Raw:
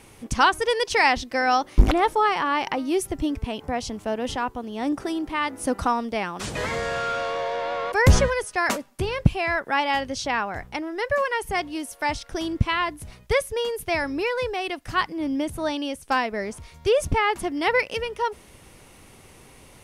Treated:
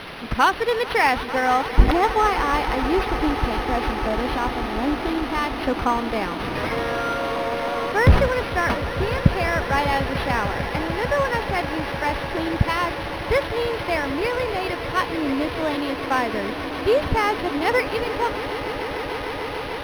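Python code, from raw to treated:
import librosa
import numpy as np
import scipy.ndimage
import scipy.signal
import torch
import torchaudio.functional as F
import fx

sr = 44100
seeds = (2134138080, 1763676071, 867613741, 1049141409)

y = fx.quant_dither(x, sr, seeds[0], bits=6, dither='triangular')
y = fx.echo_swell(y, sr, ms=149, loudest=8, wet_db=-16.5)
y = np.interp(np.arange(len(y)), np.arange(len(y))[::6], y[::6])
y = F.gain(torch.from_numpy(y), 1.5).numpy()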